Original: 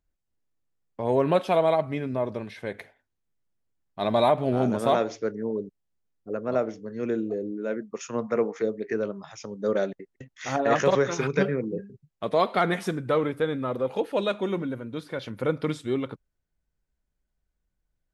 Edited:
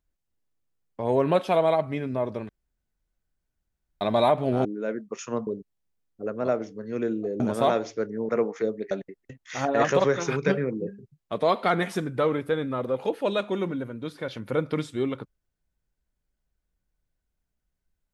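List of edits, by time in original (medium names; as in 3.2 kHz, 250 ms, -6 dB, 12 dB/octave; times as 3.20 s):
2.49–4.01 s: room tone
4.65–5.54 s: swap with 7.47–8.29 s
8.91–9.82 s: delete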